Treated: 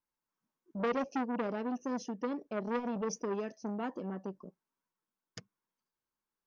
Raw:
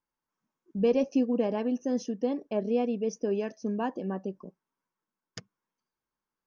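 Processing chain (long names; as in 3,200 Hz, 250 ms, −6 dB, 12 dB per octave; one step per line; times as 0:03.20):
0:02.67–0:03.22: transient designer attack +3 dB, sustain +7 dB
saturating transformer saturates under 1,100 Hz
level −4 dB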